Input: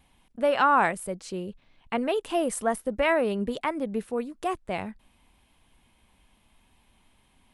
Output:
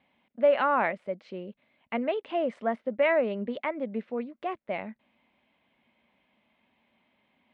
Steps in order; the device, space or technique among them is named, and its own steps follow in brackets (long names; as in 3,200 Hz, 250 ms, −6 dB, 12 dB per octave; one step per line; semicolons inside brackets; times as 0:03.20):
kitchen radio (loudspeaker in its box 170–3,600 Hz, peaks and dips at 230 Hz +6 dB, 590 Hz +9 dB, 2,100 Hz +7 dB)
level −6 dB